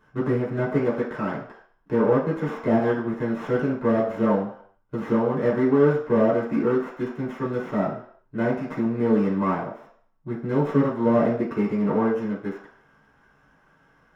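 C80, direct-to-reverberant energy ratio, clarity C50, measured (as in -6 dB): 9.5 dB, -7.5 dB, 5.5 dB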